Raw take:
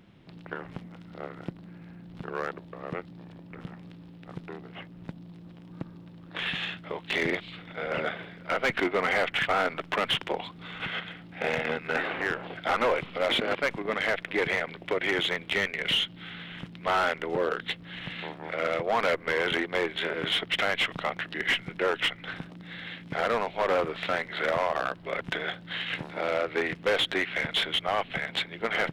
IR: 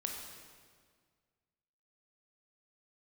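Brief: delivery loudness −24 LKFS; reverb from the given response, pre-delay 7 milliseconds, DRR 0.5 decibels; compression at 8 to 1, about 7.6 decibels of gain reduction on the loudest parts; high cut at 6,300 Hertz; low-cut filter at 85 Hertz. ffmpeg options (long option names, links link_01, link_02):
-filter_complex "[0:a]highpass=85,lowpass=6300,acompressor=threshold=-30dB:ratio=8,asplit=2[link_01][link_02];[1:a]atrim=start_sample=2205,adelay=7[link_03];[link_02][link_03]afir=irnorm=-1:irlink=0,volume=-1dB[link_04];[link_01][link_04]amix=inputs=2:normalize=0,volume=8.5dB"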